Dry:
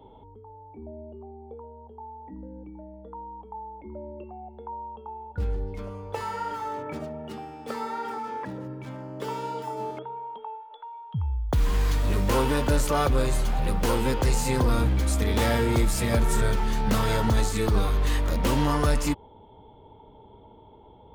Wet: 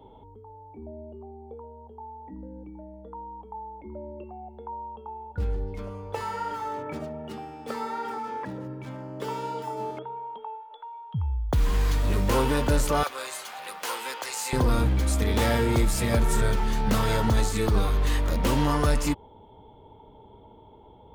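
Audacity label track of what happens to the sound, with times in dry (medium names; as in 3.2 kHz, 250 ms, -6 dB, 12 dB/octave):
13.030000	14.530000	high-pass 960 Hz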